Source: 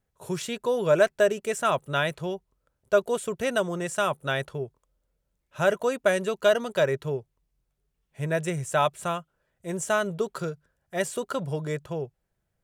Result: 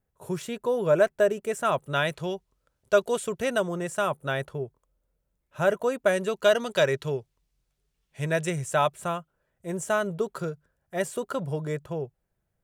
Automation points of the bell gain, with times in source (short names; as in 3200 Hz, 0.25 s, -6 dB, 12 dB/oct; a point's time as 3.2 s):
bell 4500 Hz 2.4 oct
1.49 s -7 dB
2.35 s +4.5 dB
2.99 s +4.5 dB
3.84 s -5 dB
5.95 s -5 dB
6.86 s +6.5 dB
8.21 s +6.5 dB
9.05 s -4.5 dB